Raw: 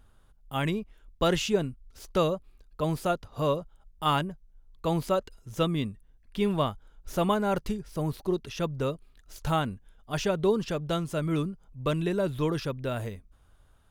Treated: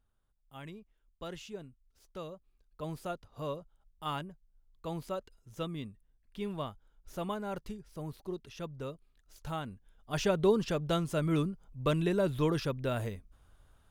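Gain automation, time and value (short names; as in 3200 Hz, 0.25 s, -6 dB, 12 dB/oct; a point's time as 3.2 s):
2.25 s -18 dB
2.86 s -11 dB
9.61 s -11 dB
10.27 s -1.5 dB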